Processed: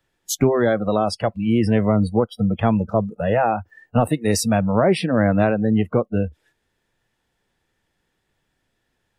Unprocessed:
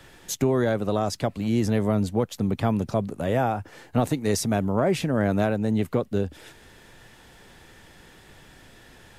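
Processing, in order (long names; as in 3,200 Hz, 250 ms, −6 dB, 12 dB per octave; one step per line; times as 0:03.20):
noise reduction from a noise print of the clip's start 28 dB
level +6 dB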